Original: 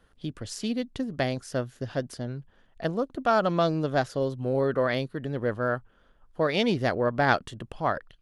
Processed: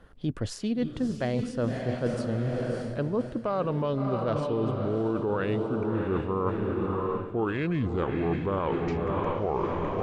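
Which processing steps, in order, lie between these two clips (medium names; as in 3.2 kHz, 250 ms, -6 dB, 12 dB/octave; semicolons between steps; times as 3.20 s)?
gliding tape speed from 101% -> 63%; treble shelf 2.3 kHz -10.5 dB; echo that smears into a reverb 633 ms, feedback 47%, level -6.5 dB; peak limiter -18 dBFS, peak gain reduction 9 dB; reverse; compression 6:1, threshold -34 dBFS, peak gain reduction 11.5 dB; reverse; trim +9 dB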